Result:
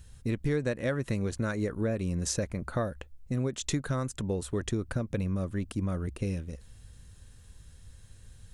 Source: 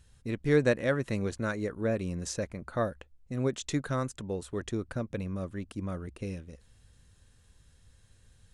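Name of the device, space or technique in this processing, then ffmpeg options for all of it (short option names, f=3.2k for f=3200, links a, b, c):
ASMR close-microphone chain: -af "lowshelf=f=170:g=6,acompressor=threshold=-30dB:ratio=6,highshelf=f=9k:g=7,volume=4dB"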